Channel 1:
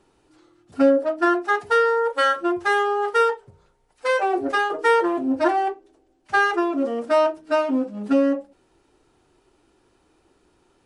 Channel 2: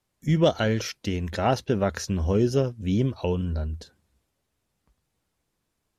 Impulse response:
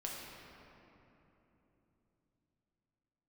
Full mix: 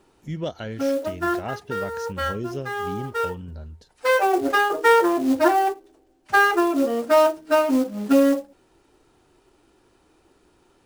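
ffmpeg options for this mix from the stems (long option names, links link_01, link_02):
-filter_complex "[0:a]acrusher=bits=5:mode=log:mix=0:aa=0.000001,volume=2dB[link_01];[1:a]volume=-9dB,asplit=2[link_02][link_03];[link_03]apad=whole_len=478572[link_04];[link_01][link_04]sidechaincompress=threshold=-39dB:ratio=10:attack=8.9:release=521[link_05];[link_05][link_02]amix=inputs=2:normalize=0"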